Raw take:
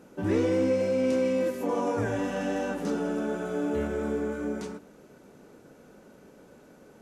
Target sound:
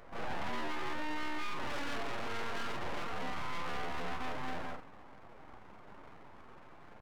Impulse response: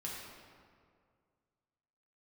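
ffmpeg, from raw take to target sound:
-filter_complex "[0:a]afftfilt=real='re':imag='-im':win_size=4096:overlap=0.75,lowpass=frequency=1200:width=0.5412,lowpass=frequency=1200:width=1.3066,crystalizer=i=7.5:c=0,alimiter=level_in=2dB:limit=-24dB:level=0:latency=1:release=62,volume=-2dB,aeval=exprs='abs(val(0))':channel_layout=same,asetrate=52444,aresample=44100,atempo=0.840896,lowshelf=frequency=160:gain=-3,asoftclip=type=tanh:threshold=-37.5dB,asplit=2[link_01][link_02];[link_02]adelay=29,volume=-12.5dB[link_03];[link_01][link_03]amix=inputs=2:normalize=0,volume=5.5dB"

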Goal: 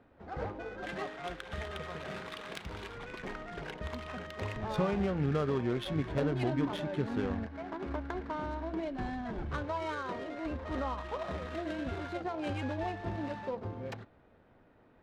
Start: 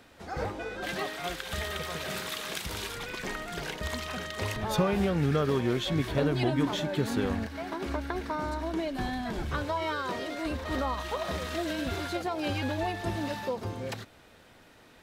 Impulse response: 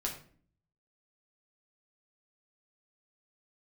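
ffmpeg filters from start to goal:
-af "bandreject=frequency=170.3:width_type=h:width=4,bandreject=frequency=340.6:width_type=h:width=4,bandreject=frequency=510.9:width_type=h:width=4,bandreject=frequency=681.2:width_type=h:width=4,bandreject=frequency=851.5:width_type=h:width=4,bandreject=frequency=1021.8:width_type=h:width=4,bandreject=frequency=1192.1:width_type=h:width=4,bandreject=frequency=1362.4:width_type=h:width=4,bandreject=frequency=1532.7:width_type=h:width=4,bandreject=frequency=1703:width_type=h:width=4,bandreject=frequency=1873.3:width_type=h:width=4,bandreject=frequency=2043.6:width_type=h:width=4,bandreject=frequency=2213.9:width_type=h:width=4,bandreject=frequency=2384.2:width_type=h:width=4,bandreject=frequency=2554.5:width_type=h:width=4,bandreject=frequency=2724.8:width_type=h:width=4,bandreject=frequency=2895.1:width_type=h:width=4,bandreject=frequency=3065.4:width_type=h:width=4,bandreject=frequency=3235.7:width_type=h:width=4,bandreject=frequency=3406:width_type=h:width=4,bandreject=frequency=3576.3:width_type=h:width=4,bandreject=frequency=3746.6:width_type=h:width=4,bandreject=frequency=3916.9:width_type=h:width=4,bandreject=frequency=4087.2:width_type=h:width=4,bandreject=frequency=4257.5:width_type=h:width=4,bandreject=frequency=4427.8:width_type=h:width=4,bandreject=frequency=4598.1:width_type=h:width=4,adynamicsmooth=sensitivity=4:basefreq=1300,volume=-4dB"

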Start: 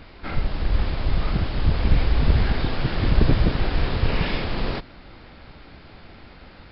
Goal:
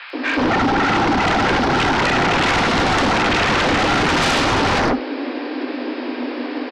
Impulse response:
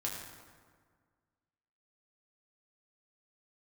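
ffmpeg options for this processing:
-filter_complex "[0:a]highshelf=frequency=3000:gain=-3.5,aresample=11025,asoftclip=type=tanh:threshold=-16dB,aresample=44100,afreqshift=240,acrossover=split=1200|4200[link_01][link_02][link_03];[link_03]adelay=100[link_04];[link_01]adelay=130[link_05];[link_05][link_02][link_04]amix=inputs=3:normalize=0,aeval=exprs='0.355*sin(PI/2*10*val(0)/0.355)':channel_layout=same,asplit=2[link_06][link_07];[1:a]atrim=start_sample=2205,atrim=end_sample=3528[link_08];[link_07][link_08]afir=irnorm=-1:irlink=0,volume=-8.5dB[link_09];[link_06][link_09]amix=inputs=2:normalize=0,volume=-7dB"

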